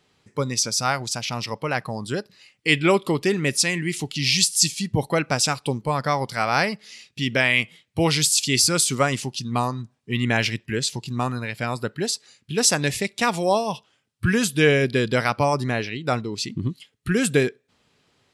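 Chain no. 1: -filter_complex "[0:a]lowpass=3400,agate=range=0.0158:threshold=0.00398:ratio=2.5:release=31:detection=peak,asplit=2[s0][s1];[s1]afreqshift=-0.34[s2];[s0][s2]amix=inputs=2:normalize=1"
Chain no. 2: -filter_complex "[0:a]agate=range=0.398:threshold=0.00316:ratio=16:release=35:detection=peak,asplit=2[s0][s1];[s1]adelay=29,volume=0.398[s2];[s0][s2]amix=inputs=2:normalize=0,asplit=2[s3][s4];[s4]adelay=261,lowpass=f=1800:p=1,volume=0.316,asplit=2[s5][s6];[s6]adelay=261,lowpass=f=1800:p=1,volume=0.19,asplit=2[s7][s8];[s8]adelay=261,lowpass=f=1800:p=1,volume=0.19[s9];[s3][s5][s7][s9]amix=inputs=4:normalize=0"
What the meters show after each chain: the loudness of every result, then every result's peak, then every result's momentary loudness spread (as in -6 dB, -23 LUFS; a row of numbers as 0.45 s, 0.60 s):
-27.0 LUFS, -21.5 LUFS; -5.5 dBFS, -3.5 dBFS; 10 LU, 11 LU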